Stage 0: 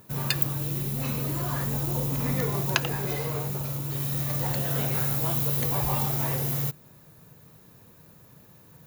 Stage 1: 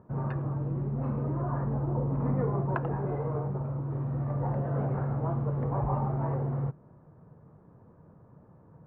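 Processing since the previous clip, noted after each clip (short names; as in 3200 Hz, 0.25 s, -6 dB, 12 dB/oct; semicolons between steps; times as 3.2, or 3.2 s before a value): LPF 1200 Hz 24 dB/oct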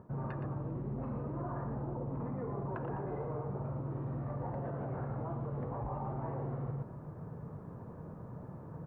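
limiter -28 dBFS, peak gain reduction 11 dB; echo 0.118 s -7.5 dB; reverse; compressor 6:1, threshold -44 dBFS, peak gain reduction 11.5 dB; reverse; gain +8 dB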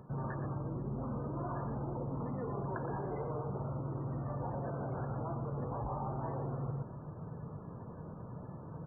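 loudest bins only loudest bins 64; high shelf 2100 Hz +9 dB; pre-echo 0.119 s -21 dB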